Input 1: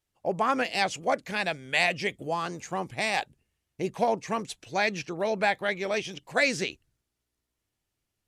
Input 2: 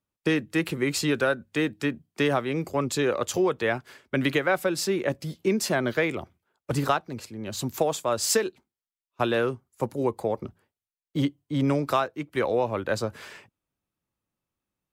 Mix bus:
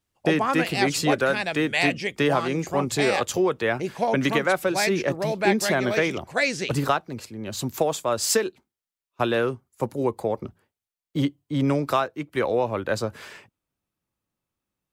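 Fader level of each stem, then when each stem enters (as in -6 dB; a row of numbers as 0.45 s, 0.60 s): +1.0 dB, +1.5 dB; 0.00 s, 0.00 s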